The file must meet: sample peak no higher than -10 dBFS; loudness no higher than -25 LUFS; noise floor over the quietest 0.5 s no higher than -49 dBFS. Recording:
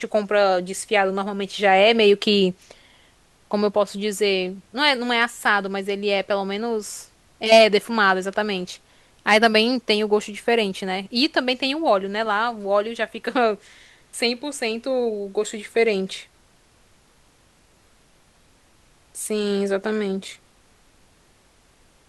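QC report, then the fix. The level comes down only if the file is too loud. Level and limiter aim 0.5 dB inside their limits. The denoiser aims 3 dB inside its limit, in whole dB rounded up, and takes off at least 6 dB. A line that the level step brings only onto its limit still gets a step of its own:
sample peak -2.0 dBFS: fail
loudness -21.0 LUFS: fail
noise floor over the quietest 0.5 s -57 dBFS: OK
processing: gain -4.5 dB; limiter -10.5 dBFS

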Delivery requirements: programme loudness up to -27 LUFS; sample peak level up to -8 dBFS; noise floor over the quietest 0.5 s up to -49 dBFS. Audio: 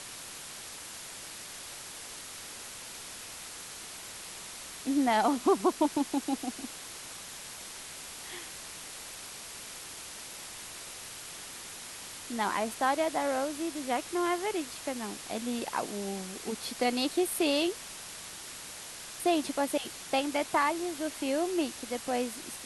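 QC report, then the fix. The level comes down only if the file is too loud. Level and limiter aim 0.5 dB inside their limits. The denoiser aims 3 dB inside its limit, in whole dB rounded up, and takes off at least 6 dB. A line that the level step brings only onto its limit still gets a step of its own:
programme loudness -33.5 LUFS: OK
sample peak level -14.5 dBFS: OK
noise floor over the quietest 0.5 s -44 dBFS: fail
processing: denoiser 8 dB, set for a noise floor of -44 dBFS

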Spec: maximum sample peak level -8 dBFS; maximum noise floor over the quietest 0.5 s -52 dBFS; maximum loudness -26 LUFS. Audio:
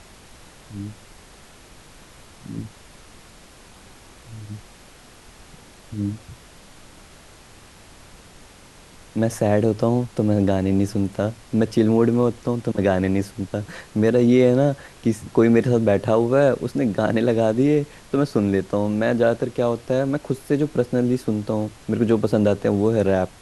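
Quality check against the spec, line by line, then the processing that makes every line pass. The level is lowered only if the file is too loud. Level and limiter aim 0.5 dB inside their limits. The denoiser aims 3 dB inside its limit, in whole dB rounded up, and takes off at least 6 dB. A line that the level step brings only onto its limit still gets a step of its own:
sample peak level -4.0 dBFS: fail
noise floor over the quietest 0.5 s -47 dBFS: fail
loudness -20.5 LUFS: fail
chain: gain -6 dB

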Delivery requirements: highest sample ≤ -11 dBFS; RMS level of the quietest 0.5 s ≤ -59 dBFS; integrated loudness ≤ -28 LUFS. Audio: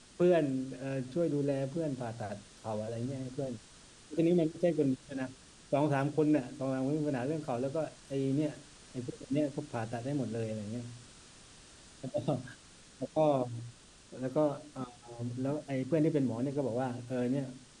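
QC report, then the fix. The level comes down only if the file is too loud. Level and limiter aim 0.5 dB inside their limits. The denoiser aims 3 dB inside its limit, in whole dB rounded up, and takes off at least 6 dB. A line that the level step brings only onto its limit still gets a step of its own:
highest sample -17.0 dBFS: OK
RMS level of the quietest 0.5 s -56 dBFS: fail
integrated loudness -34.0 LUFS: OK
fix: denoiser 6 dB, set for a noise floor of -56 dBFS

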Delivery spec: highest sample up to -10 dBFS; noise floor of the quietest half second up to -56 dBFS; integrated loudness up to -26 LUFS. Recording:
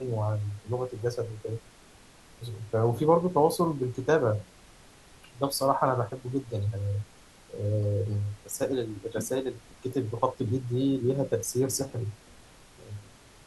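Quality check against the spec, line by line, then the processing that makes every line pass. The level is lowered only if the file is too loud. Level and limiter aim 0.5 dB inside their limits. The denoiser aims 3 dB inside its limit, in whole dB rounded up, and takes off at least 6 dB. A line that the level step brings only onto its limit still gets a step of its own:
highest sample -9.0 dBFS: fail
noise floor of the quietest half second -54 dBFS: fail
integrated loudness -29.0 LUFS: OK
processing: denoiser 6 dB, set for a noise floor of -54 dBFS; limiter -10.5 dBFS

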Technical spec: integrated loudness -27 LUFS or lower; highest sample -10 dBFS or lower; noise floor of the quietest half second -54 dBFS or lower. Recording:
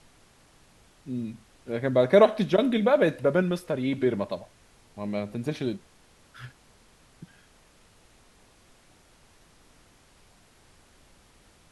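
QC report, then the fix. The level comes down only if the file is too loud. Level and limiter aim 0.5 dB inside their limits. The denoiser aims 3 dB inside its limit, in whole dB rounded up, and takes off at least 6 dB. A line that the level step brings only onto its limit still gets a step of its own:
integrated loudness -25.5 LUFS: fail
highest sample -6.0 dBFS: fail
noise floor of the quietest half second -58 dBFS: OK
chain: gain -2 dB; limiter -10.5 dBFS

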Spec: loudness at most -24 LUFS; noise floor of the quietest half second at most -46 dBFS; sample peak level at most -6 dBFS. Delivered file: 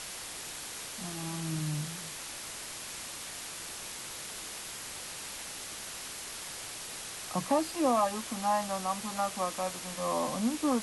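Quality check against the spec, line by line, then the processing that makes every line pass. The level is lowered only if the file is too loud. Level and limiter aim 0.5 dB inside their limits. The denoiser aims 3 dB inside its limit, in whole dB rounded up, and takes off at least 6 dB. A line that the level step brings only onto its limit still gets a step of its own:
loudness -34.5 LUFS: OK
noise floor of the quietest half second -42 dBFS: fail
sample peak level -16.0 dBFS: OK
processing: denoiser 7 dB, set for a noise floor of -42 dBFS

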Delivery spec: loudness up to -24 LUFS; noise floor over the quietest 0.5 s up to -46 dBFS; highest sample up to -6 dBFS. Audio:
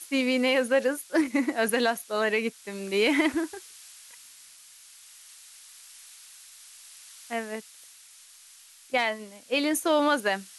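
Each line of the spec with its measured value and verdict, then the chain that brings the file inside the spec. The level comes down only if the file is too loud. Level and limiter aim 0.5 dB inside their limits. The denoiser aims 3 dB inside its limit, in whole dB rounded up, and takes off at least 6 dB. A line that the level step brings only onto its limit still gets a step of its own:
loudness -26.5 LUFS: OK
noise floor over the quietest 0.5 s -53 dBFS: OK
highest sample -12.0 dBFS: OK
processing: none

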